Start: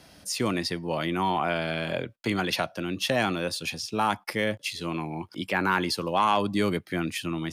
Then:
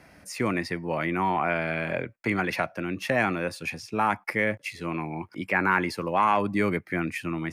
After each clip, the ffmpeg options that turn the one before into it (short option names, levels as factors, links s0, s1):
-af "highshelf=f=2700:t=q:w=3:g=-6.5"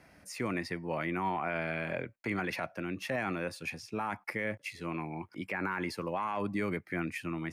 -af "alimiter=limit=0.141:level=0:latency=1:release=40,volume=0.501"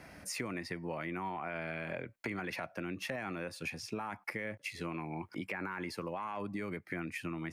-af "acompressor=threshold=0.00708:ratio=6,volume=2.11"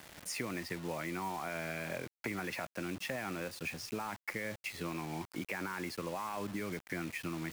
-af "acrusher=bits=7:mix=0:aa=0.000001"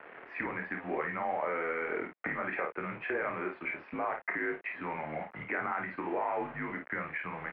-af "highpass=f=450:t=q:w=0.5412,highpass=f=450:t=q:w=1.307,lowpass=f=2400:t=q:w=0.5176,lowpass=f=2400:t=q:w=0.7071,lowpass=f=2400:t=q:w=1.932,afreqshift=-160,aecho=1:1:27|53:0.473|0.473,volume=2"